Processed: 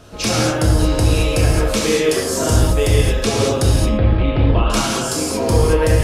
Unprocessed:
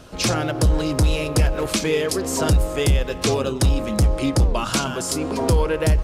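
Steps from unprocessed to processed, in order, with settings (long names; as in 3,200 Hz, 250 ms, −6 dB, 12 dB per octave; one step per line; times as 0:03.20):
0:03.75–0:04.70: Butterworth low-pass 3,600 Hz 48 dB per octave
convolution reverb, pre-delay 3 ms, DRR −4.5 dB
level −1.5 dB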